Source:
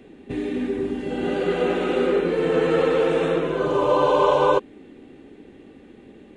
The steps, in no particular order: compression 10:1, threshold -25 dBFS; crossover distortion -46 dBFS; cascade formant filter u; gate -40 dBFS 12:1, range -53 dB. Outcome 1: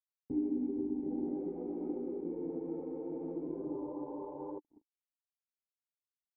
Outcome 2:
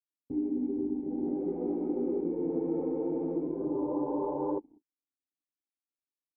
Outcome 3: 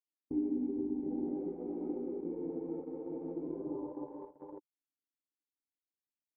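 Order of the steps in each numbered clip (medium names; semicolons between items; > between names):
gate > compression > crossover distortion > cascade formant filter; crossover distortion > gate > cascade formant filter > compression; compression > crossover distortion > cascade formant filter > gate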